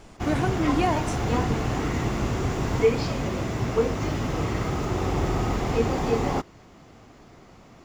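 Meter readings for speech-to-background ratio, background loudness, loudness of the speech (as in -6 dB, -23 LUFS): -2.0 dB, -26.0 LUFS, -28.0 LUFS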